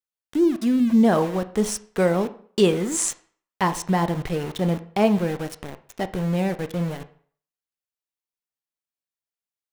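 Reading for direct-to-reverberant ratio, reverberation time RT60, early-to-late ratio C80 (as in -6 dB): 10.5 dB, 0.50 s, 19.0 dB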